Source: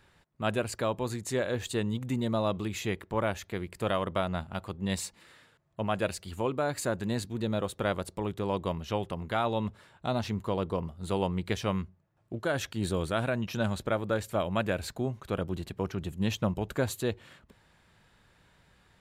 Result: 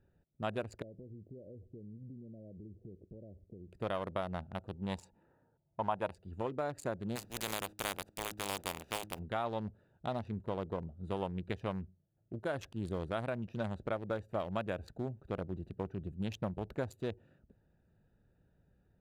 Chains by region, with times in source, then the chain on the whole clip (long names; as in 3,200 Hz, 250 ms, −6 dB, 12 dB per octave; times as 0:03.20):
0:00.82–0:03.68: Butterworth low-pass 600 Hz + downward compressor 16 to 1, threshold −40 dBFS
0:04.75–0:06.15: low-pass that shuts in the quiet parts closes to 1,100 Hz, open at −27 dBFS + parametric band 920 Hz +13.5 dB 0.51 octaves
0:07.15–0:09.18: compressing power law on the bin magnitudes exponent 0.24 + hum removal 104.3 Hz, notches 3
whole clip: adaptive Wiener filter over 41 samples; dynamic equaliser 790 Hz, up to +5 dB, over −43 dBFS, Q 1; downward compressor 2 to 1, threshold −31 dBFS; level −4.5 dB